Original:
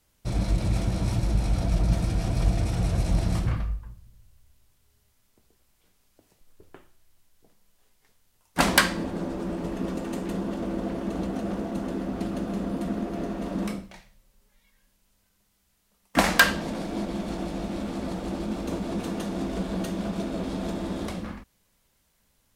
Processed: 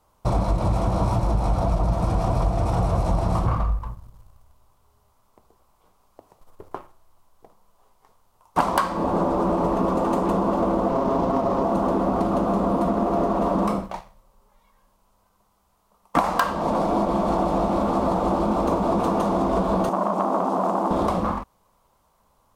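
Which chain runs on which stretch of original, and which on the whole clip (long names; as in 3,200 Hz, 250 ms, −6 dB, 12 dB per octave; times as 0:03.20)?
0:10.91–0:11.63: variable-slope delta modulation 32 kbit/s + comb filter 7.4 ms, depth 51% + windowed peak hold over 17 samples
0:19.89–0:20.91: Butterworth high-pass 180 Hz 96 dB per octave + flat-topped bell 2,100 Hz −9.5 dB 2.5 octaves + saturating transformer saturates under 1,200 Hz
whole clip: drawn EQ curve 290 Hz 0 dB, 1,100 Hz +14 dB, 1,700 Hz −6 dB; downward compressor 6 to 1, threshold −27 dBFS; leveller curve on the samples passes 1; level +5.5 dB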